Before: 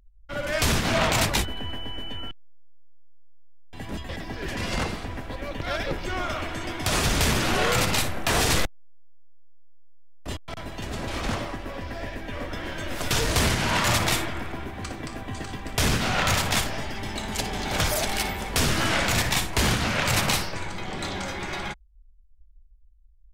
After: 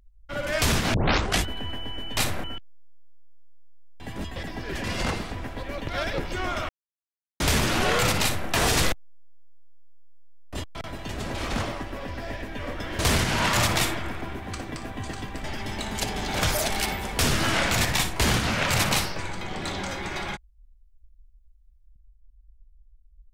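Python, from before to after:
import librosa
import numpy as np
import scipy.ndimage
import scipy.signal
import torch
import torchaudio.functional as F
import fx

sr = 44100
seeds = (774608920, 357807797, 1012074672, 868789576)

y = fx.edit(x, sr, fx.tape_start(start_s=0.94, length_s=0.51),
    fx.silence(start_s=6.42, length_s=0.71),
    fx.duplicate(start_s=7.95, length_s=0.27, to_s=2.17),
    fx.cut(start_s=12.72, length_s=0.58),
    fx.cut(start_s=15.75, length_s=1.06), tone=tone)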